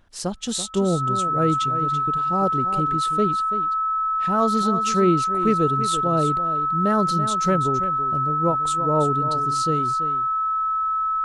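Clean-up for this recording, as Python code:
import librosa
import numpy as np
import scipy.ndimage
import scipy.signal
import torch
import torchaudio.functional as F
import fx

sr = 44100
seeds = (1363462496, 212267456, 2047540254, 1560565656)

y = fx.notch(x, sr, hz=1300.0, q=30.0)
y = fx.fix_echo_inverse(y, sr, delay_ms=334, level_db=-11.0)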